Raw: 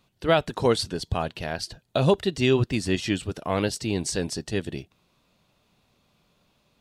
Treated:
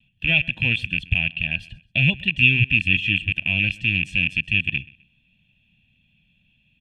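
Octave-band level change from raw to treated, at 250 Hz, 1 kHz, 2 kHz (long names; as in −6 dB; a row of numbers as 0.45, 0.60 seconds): −3.0 dB, below −15 dB, +15.5 dB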